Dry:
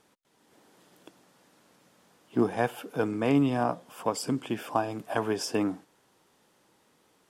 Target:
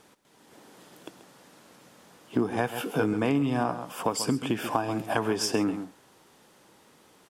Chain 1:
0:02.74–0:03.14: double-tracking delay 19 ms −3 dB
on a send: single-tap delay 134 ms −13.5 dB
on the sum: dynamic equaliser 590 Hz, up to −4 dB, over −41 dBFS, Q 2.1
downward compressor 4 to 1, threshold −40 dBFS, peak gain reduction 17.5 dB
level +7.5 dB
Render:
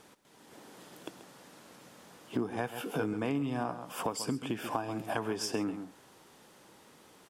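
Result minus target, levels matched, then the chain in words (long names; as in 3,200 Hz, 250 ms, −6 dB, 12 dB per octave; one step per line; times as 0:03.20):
downward compressor: peak gain reduction +7 dB
0:02.74–0:03.14: double-tracking delay 19 ms −3 dB
on a send: single-tap delay 134 ms −13.5 dB
on the sum: dynamic equaliser 590 Hz, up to −4 dB, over −41 dBFS, Q 2.1
downward compressor 4 to 1, threshold −30.5 dBFS, peak gain reduction 10.5 dB
level +7.5 dB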